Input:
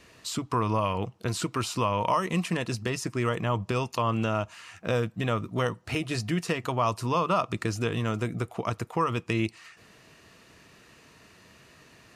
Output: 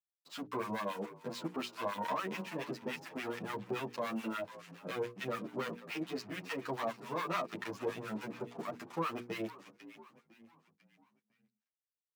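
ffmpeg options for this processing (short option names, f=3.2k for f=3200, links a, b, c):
-filter_complex "[0:a]lowpass=3.6k,aeval=exprs='(tanh(17.8*val(0)+0.7)-tanh(0.7))/17.8':c=same,agate=range=-33dB:threshold=-49dB:ratio=3:detection=peak,acrusher=bits=7:mix=0:aa=0.5,asplit=2[a][b];[b]asplit=4[c][d][e][f];[c]adelay=500,afreqshift=-53,volume=-15.5dB[g];[d]adelay=1000,afreqshift=-106,volume=-22.2dB[h];[e]adelay=1500,afreqshift=-159,volume=-29dB[i];[f]adelay=2000,afreqshift=-212,volume=-35.7dB[j];[g][h][i][j]amix=inputs=4:normalize=0[k];[a][k]amix=inputs=2:normalize=0,acrossover=split=950[l][m];[l]aeval=exprs='val(0)*(1-1/2+1/2*cos(2*PI*7*n/s))':c=same[n];[m]aeval=exprs='val(0)*(1-1/2-1/2*cos(2*PI*7*n/s))':c=same[o];[n][o]amix=inputs=2:normalize=0,highpass=f=180:w=0.5412,highpass=f=180:w=1.3066,bandreject=f=60:t=h:w=6,bandreject=f=120:t=h:w=6,bandreject=f=180:t=h:w=6,bandreject=f=240:t=h:w=6,bandreject=f=300:t=h:w=6,bandreject=f=360:t=h:w=6,bandreject=f=420:t=h:w=6,bandreject=f=480:t=h:w=6,asplit=2[p][q];[q]adelay=9.5,afreqshift=0.68[r];[p][r]amix=inputs=2:normalize=1,volume=4dB"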